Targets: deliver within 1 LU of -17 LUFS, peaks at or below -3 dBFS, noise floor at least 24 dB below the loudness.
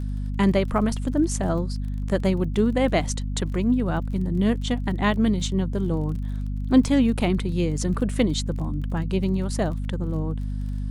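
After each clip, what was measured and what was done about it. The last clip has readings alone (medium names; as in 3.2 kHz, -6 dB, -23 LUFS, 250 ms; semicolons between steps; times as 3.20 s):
tick rate 31 per s; hum 50 Hz; highest harmonic 250 Hz; hum level -25 dBFS; loudness -24.5 LUFS; peak level -6.0 dBFS; loudness target -17.0 LUFS
-> de-click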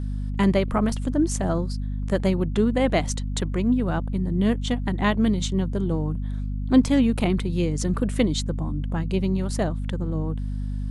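tick rate 0 per s; hum 50 Hz; highest harmonic 250 Hz; hum level -25 dBFS
-> de-hum 50 Hz, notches 5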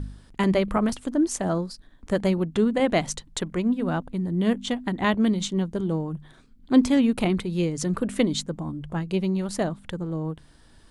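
hum not found; loudness -25.5 LUFS; peak level -8.0 dBFS; loudness target -17.0 LUFS
-> trim +8.5 dB; peak limiter -3 dBFS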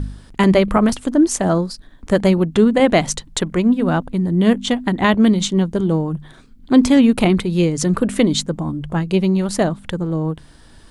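loudness -17.0 LUFS; peak level -3.0 dBFS; noise floor -45 dBFS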